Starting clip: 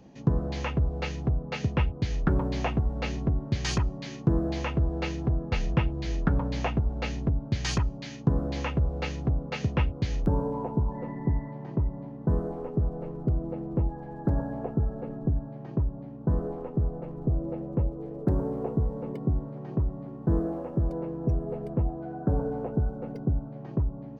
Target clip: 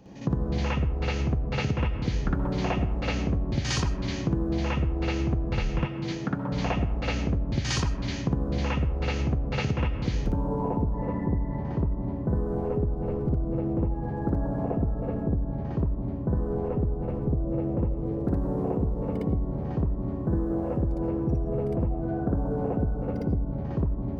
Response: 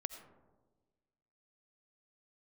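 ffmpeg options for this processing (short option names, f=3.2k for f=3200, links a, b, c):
-filter_complex "[0:a]asplit=2[a][b];[1:a]atrim=start_sample=2205,adelay=58[c];[b][c]afir=irnorm=-1:irlink=0,volume=7.5dB[d];[a][d]amix=inputs=2:normalize=0,acompressor=threshold=-23dB:ratio=6,asettb=1/sr,asplit=3[e][f][g];[e]atrim=end=5.854[h];[f]atrim=start=5.85:end=6.52,asetpts=PTS-STARTPTS,afade=t=in:d=0.004:c=qsin,afade=t=out:st=0.666:d=0.004:c=qsin,highpass=f=110:w=0.5412,highpass=f=110:w=1.3066[i];[g]atrim=start=6.516[j];[h][i]acrossfade=d=0.004:c1=hsin:c2=qsin[k];[k][j]acrossfade=d=0.004:c1=qsin:c2=hsin"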